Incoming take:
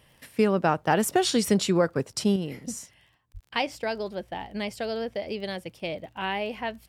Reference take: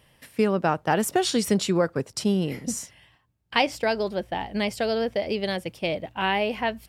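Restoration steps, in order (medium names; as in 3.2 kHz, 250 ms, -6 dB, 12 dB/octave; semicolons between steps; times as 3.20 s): de-click; 3.33–3.45 s: high-pass 140 Hz 24 dB/octave; trim 0 dB, from 2.36 s +5.5 dB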